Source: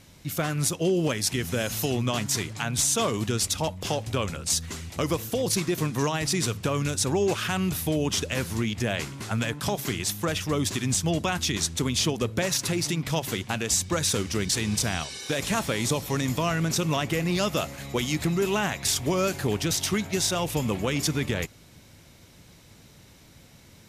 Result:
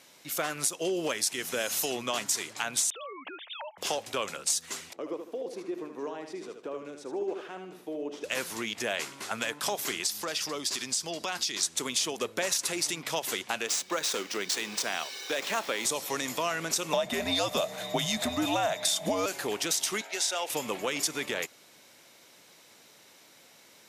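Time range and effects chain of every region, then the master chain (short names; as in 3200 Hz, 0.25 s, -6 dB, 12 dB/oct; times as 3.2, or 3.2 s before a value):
2.9–3.78 sine-wave speech + HPF 480 Hz + compressor 8:1, threshold -36 dBFS
4.93–8.24 band-pass 340 Hz, Q 1.6 + tilt +1.5 dB/oct + feedback echo 76 ms, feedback 35%, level -7 dB
10.06–11.63 bell 4800 Hz +10.5 dB 0.48 oct + compressor 4:1, threshold -27 dBFS
13.67–15.85 median filter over 5 samples + HPF 190 Hz
16.93–19.26 small resonant body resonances 240/730/3700 Hz, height 18 dB, ringing for 35 ms + frequency shift -89 Hz
20.01–20.5 HPF 520 Hz + high shelf 9200 Hz -11 dB + notch 1100 Hz, Q 6.1
whole clip: HPF 440 Hz 12 dB/oct; dynamic EQ 8300 Hz, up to +5 dB, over -38 dBFS, Q 0.95; compressor, threshold -25 dBFS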